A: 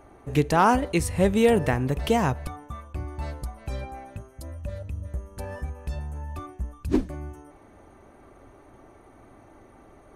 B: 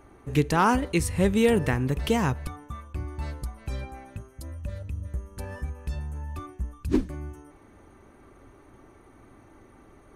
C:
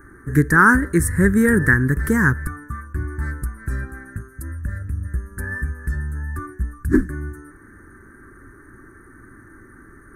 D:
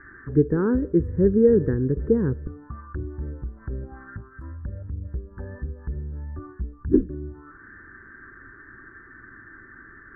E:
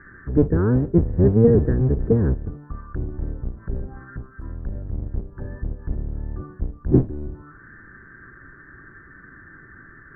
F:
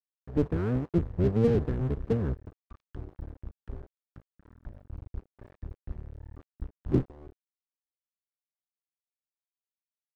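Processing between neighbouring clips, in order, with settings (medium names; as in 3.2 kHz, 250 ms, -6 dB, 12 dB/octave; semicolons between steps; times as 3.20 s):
peaking EQ 670 Hz -7 dB 0.74 oct
FFT filter 360 Hz 0 dB, 710 Hz -20 dB, 1.7 kHz +14 dB, 2.7 kHz -30 dB, 9.7 kHz +3 dB; trim +7.5 dB
touch-sensitive low-pass 470–2000 Hz down, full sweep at -21.5 dBFS; trim -6.5 dB
octave divider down 1 oct, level +3 dB
crossover distortion -29 dBFS; trim -8 dB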